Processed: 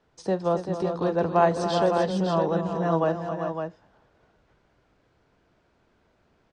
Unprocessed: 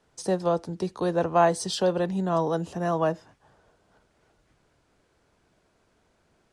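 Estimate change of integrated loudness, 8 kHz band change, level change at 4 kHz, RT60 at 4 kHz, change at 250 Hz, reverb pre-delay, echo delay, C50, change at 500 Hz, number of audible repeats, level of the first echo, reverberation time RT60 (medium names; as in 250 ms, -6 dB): +0.5 dB, no reading, -2.0 dB, no reverb, +1.5 dB, no reverb, 41 ms, no reverb, +1.5 dB, 4, -17.5 dB, no reverb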